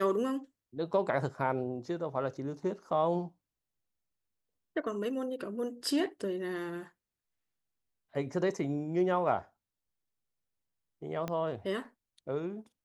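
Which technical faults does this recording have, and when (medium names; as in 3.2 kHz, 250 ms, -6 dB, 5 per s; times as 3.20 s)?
11.28 s: pop -21 dBFS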